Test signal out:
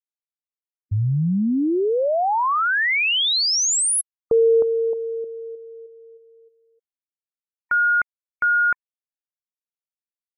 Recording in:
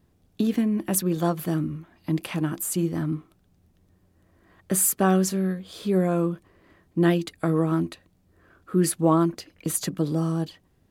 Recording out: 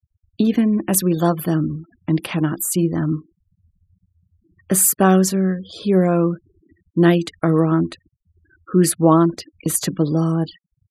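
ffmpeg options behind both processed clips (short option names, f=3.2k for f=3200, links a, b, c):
-af "aresample=32000,aresample=44100,afftfilt=real='re*gte(hypot(re,im),0.00708)':imag='im*gte(hypot(re,im),0.00708)':win_size=1024:overlap=0.75,volume=6.5dB"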